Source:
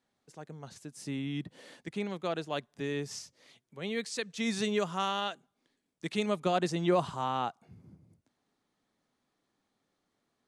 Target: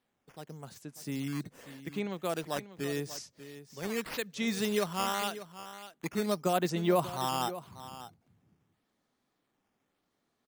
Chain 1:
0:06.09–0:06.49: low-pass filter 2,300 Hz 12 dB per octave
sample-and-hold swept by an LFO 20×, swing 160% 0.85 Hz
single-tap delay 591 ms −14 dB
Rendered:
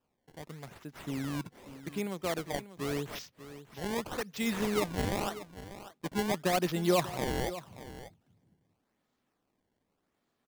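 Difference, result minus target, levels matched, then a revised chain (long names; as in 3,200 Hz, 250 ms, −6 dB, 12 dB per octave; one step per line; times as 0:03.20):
sample-and-hold swept by an LFO: distortion +9 dB
0:06.09–0:06.49: low-pass filter 2,300 Hz 12 dB per octave
sample-and-hold swept by an LFO 6×, swing 160% 0.85 Hz
single-tap delay 591 ms −14 dB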